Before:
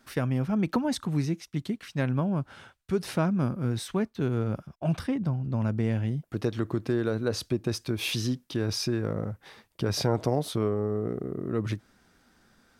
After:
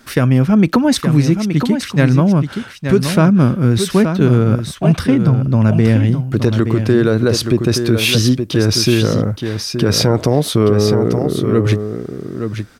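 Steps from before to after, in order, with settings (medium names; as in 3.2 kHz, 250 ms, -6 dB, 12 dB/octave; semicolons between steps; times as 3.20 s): peaking EQ 800 Hz -4.5 dB 0.75 oct; on a send: delay 872 ms -8 dB; on the sum: loudness maximiser +16.5 dB; trim -1 dB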